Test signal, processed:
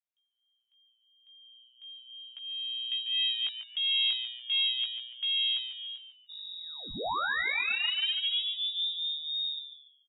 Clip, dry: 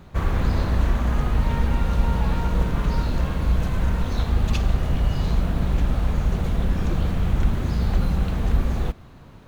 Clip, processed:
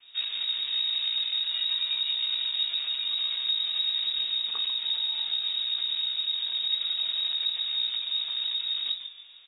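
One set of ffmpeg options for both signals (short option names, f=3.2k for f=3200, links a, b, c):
-filter_complex "[0:a]adynamicequalizer=threshold=0.0158:dfrequency=220:dqfactor=0.85:tfrequency=220:tqfactor=0.85:attack=5:release=100:ratio=0.375:range=2.5:mode=cutabove:tftype=bell,aecho=1:1:4.2:0.33,alimiter=limit=-13.5dB:level=0:latency=1:release=135,flanger=delay=15:depth=4.9:speed=0.37,aeval=exprs='0.211*(cos(1*acos(clip(val(0)/0.211,-1,1)))-cos(1*PI/2))+0.106*(cos(2*acos(clip(val(0)/0.211,-1,1)))-cos(2*PI/2))+0.0188*(cos(5*acos(clip(val(0)/0.211,-1,1)))-cos(5*PI/2))':c=same,asplit=5[a][b][c][d][e];[b]adelay=144,afreqshift=120,volume=-10dB[f];[c]adelay=288,afreqshift=240,volume=-19.9dB[g];[d]adelay=432,afreqshift=360,volume=-29.8dB[h];[e]adelay=576,afreqshift=480,volume=-39.7dB[i];[a][f][g][h][i]amix=inputs=5:normalize=0,lowpass=f=3.2k:t=q:w=0.5098,lowpass=f=3.2k:t=q:w=0.6013,lowpass=f=3.2k:t=q:w=0.9,lowpass=f=3.2k:t=q:w=2.563,afreqshift=-3800,volume=-7.5dB"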